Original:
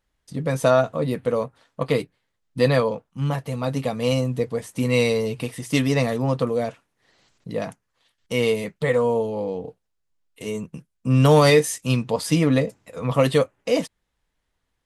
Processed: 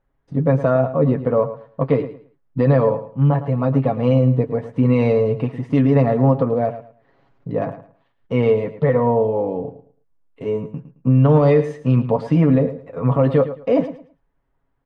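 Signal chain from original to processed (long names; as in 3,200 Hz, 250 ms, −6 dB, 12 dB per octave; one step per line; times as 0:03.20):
low-pass filter 1,200 Hz 12 dB per octave
comb filter 7.3 ms, depth 49%
brickwall limiter −12.5 dBFS, peak gain reduction 8.5 dB
repeating echo 109 ms, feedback 23%, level −13 dB
level +5.5 dB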